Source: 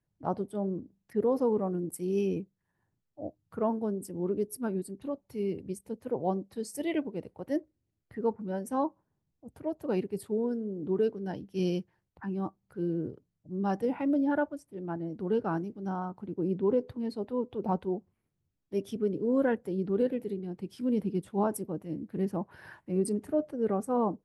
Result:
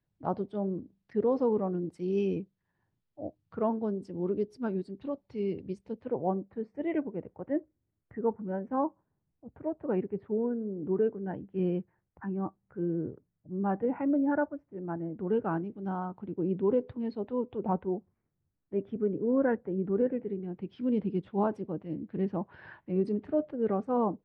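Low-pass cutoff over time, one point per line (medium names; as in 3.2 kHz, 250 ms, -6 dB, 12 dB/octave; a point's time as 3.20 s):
low-pass 24 dB/octave
5.88 s 4.6 kHz
6.36 s 2 kHz
14.88 s 2 kHz
15.85 s 3.4 kHz
17.44 s 3.4 kHz
17.91 s 2 kHz
20.14 s 2 kHz
20.83 s 3.6 kHz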